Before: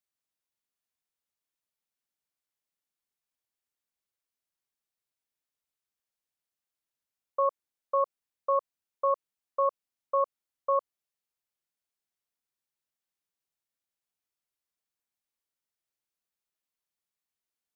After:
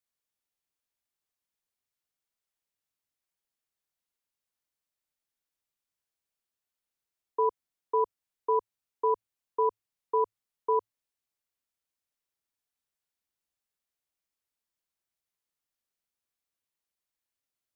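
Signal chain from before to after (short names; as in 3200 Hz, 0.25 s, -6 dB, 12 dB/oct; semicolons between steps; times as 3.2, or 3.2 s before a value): frequency shift -110 Hz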